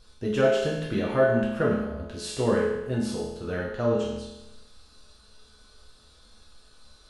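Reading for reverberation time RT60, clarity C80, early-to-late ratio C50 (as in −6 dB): 0.95 s, 4.5 dB, 1.5 dB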